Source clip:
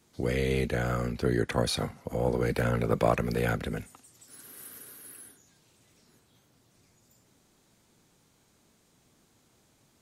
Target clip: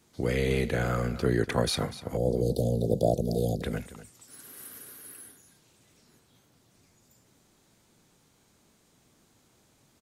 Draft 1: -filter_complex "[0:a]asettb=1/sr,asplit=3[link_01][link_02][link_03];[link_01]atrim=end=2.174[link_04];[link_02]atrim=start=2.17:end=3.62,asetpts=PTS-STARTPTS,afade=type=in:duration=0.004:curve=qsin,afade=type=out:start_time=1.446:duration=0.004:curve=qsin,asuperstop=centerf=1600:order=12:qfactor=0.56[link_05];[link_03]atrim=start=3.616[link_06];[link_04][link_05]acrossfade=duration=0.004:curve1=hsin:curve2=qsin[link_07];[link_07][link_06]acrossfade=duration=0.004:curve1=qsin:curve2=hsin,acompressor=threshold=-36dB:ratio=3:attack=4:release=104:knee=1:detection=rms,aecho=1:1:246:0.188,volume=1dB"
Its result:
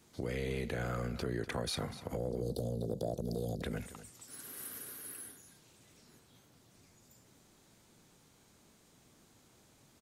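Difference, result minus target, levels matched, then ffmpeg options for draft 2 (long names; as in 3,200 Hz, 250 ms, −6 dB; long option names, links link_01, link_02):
downward compressor: peak gain reduction +14 dB
-filter_complex "[0:a]asettb=1/sr,asplit=3[link_01][link_02][link_03];[link_01]atrim=end=2.174[link_04];[link_02]atrim=start=2.17:end=3.62,asetpts=PTS-STARTPTS,afade=type=in:duration=0.004:curve=qsin,afade=type=out:start_time=1.446:duration=0.004:curve=qsin,asuperstop=centerf=1600:order=12:qfactor=0.56[link_05];[link_03]atrim=start=3.616[link_06];[link_04][link_05]acrossfade=duration=0.004:curve1=hsin:curve2=qsin[link_07];[link_07][link_06]acrossfade=duration=0.004:curve1=qsin:curve2=hsin,aecho=1:1:246:0.188,volume=1dB"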